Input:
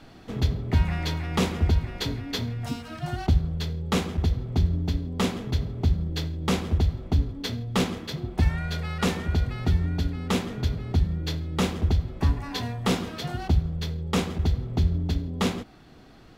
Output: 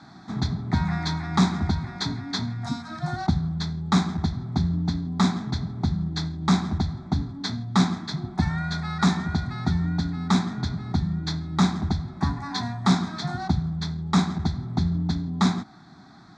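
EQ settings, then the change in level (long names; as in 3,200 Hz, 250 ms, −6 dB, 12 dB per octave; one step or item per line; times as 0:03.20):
loudspeaker in its box 140–6,900 Hz, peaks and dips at 180 Hz +6 dB, 770 Hz +4 dB, 3,800 Hz +10 dB
phaser with its sweep stopped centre 1,200 Hz, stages 4
+5.0 dB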